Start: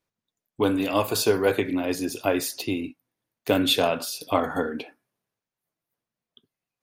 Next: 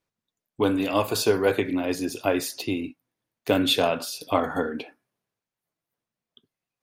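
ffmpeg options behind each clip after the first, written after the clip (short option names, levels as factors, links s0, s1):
-af "highshelf=f=10000:g=-5"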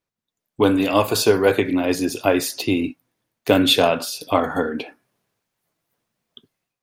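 -af "dynaudnorm=f=150:g=5:m=4.47,volume=0.794"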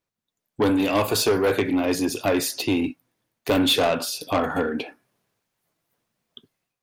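-af "asoftclip=type=tanh:threshold=0.188"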